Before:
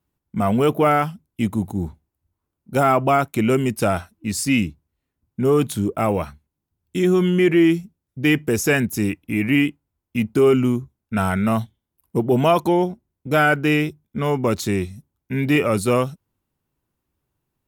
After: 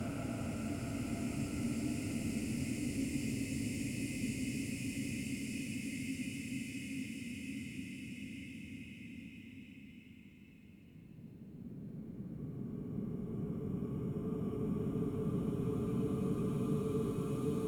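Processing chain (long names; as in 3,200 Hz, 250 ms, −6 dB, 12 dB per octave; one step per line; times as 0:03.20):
gate with flip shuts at −22 dBFS, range −28 dB
extreme stretch with random phases 12×, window 1.00 s, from 0:04.08
level +7 dB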